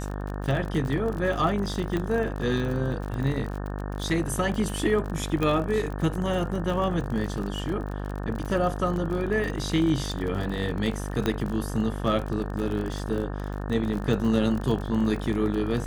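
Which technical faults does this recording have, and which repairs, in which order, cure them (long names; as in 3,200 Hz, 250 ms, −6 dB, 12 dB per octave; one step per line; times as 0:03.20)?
mains buzz 50 Hz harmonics 36 −32 dBFS
surface crackle 43 per second −31 dBFS
0:01.97: click −16 dBFS
0:05.43: click −14 dBFS
0:11.26: click −12 dBFS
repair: click removal
hum removal 50 Hz, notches 36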